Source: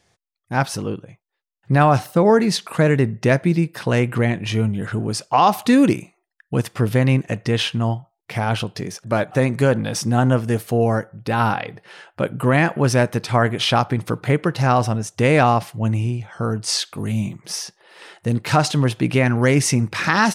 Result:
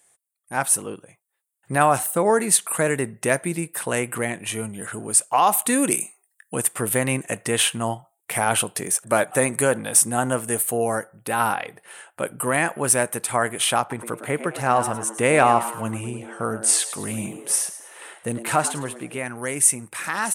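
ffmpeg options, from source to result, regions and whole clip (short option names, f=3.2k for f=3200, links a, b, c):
-filter_complex "[0:a]asettb=1/sr,asplit=3[a][b][c];[a]atrim=end=5.914[d];[b]atrim=start=5.91:end=6.55,asetpts=PTS-STARTPTS,afade=t=in:d=0.004:c=qsin,afade=t=out:st=0.636:d=0.004:c=qsin,highshelf=f=2.8k:g=9,afreqshift=27,asplit=2[e][f];[f]adelay=21,volume=-13.5dB[g];[e][g]amix=inputs=2:normalize=0,atrim=end_sample=28224[h];[c]atrim=start=6.546[i];[d][h]acrossfade=d=0.004:c1=hsin:c2=qsin[j];[j][i]acrossfade=d=0.004:c1=qsin:c2=hsin,asettb=1/sr,asplit=3[k][l][m];[k]atrim=end=13.804[n];[l]atrim=start=13.8:end=19.19,asetpts=PTS-STARTPTS,afade=t=in:d=0.004:c=qsin,afade=t=out:st=5.386:d=0.004:c=qsin,aemphasis=mode=reproduction:type=cd,asplit=5[o][p][q][r][s];[p]adelay=106,afreqshift=110,volume=-13dB[t];[q]adelay=212,afreqshift=220,volume=-20.3dB[u];[r]adelay=318,afreqshift=330,volume=-27.7dB[v];[s]adelay=424,afreqshift=440,volume=-35dB[w];[o][t][u][v][w]amix=inputs=5:normalize=0,atrim=end_sample=237699[x];[m]atrim=start=19.186[y];[n][x]acrossfade=d=0.004:c1=hsin:c2=qsin[z];[z][y]acrossfade=d=0.004:c1=qsin:c2=hsin,highpass=f=590:p=1,highshelf=f=6.8k:t=q:w=3:g=11.5,dynaudnorm=f=760:g=3:m=11.5dB,volume=-1.5dB"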